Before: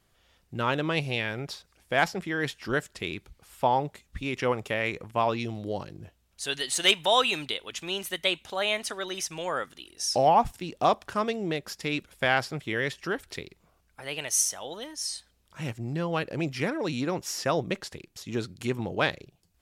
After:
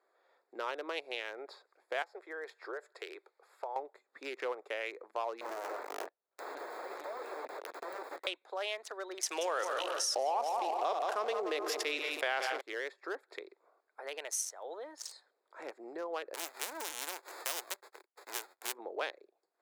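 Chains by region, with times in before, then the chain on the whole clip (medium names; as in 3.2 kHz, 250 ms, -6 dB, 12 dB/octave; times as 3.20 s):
2.02–3.76 s: Chebyshev high-pass 400 Hz, order 3 + compression 3:1, threshold -32 dBFS
5.41–8.27 s: waveshaping leveller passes 5 + integer overflow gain 21.5 dB + de-esser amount 50%
9.23–12.61 s: backward echo that repeats 211 ms, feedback 48%, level -13 dB + feedback delay 179 ms, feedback 35%, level -11 dB + level flattener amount 70%
16.33–18.72 s: formants flattened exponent 0.1 + gate -46 dBFS, range -21 dB
whole clip: local Wiener filter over 15 samples; steep high-pass 380 Hz 36 dB/octave; compression 2:1, threshold -43 dBFS; trim +1 dB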